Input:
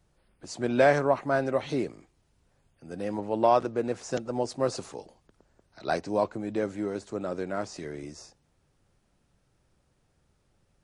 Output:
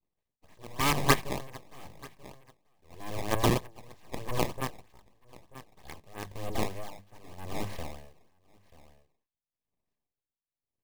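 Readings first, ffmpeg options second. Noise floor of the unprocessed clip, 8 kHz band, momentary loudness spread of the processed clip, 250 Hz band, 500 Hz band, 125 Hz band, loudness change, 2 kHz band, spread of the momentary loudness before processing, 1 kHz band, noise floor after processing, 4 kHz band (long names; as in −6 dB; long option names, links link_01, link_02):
−70 dBFS, +4.5 dB, 23 LU, −5.0 dB, −10.5 dB, +2.5 dB, −3.5 dB, −2.0 dB, 17 LU, −4.5 dB, below −85 dBFS, +5.5 dB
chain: -filter_complex "[0:a]aemphasis=mode=production:type=50kf,agate=range=-33dB:threshold=-54dB:ratio=3:detection=peak,acrossover=split=5500[link_01][link_02];[link_02]acompressor=threshold=-54dB:ratio=4:attack=1:release=60[link_03];[link_01][link_03]amix=inputs=2:normalize=0,aeval=exprs='abs(val(0))':channel_layout=same,highshelf=frequency=7700:gain=-10.5,bandreject=frequency=50:width_type=h:width=6,bandreject=frequency=100:width_type=h:width=6,bandreject=frequency=150:width_type=h:width=6,bandreject=frequency=200:width_type=h:width=6,acrusher=samples=17:mix=1:aa=0.000001:lfo=1:lforange=27.2:lforate=3.2,aeval=exprs='0.335*(cos(1*acos(clip(val(0)/0.335,-1,1)))-cos(1*PI/2))+0.0335*(cos(5*acos(clip(val(0)/0.335,-1,1)))-cos(5*PI/2))+0.168*(cos(7*acos(clip(val(0)/0.335,-1,1)))-cos(7*PI/2))':channel_layout=same,asuperstop=centerf=1400:order=4:qfactor=4.7,aecho=1:1:936:0.0891,aeval=exprs='val(0)*pow(10,-20*(0.5-0.5*cos(2*PI*0.91*n/s))/20)':channel_layout=same"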